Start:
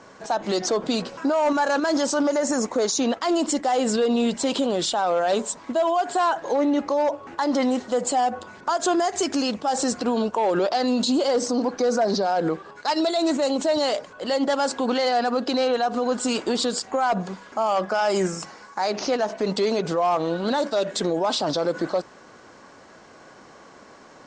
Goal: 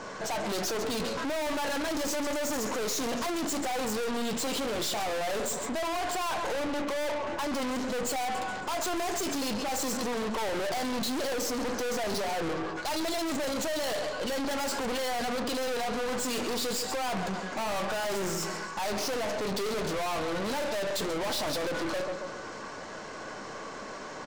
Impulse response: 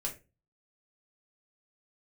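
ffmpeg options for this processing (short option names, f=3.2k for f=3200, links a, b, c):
-filter_complex "[0:a]aecho=1:1:138|276|414|552:0.178|0.0694|0.027|0.0105,asplit=2[a][b];[1:a]atrim=start_sample=2205,lowshelf=f=220:g=-10[c];[b][c]afir=irnorm=-1:irlink=0,volume=-4dB[d];[a][d]amix=inputs=2:normalize=0,aeval=exprs='(tanh(63.1*val(0)+0.4)-tanh(0.4))/63.1':c=same,volume=5.5dB"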